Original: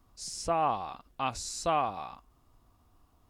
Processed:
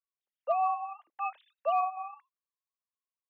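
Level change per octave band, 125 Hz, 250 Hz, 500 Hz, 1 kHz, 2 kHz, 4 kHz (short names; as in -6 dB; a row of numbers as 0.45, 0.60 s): under -35 dB, under -35 dB, -1.0 dB, +0.5 dB, -3.5 dB, under -15 dB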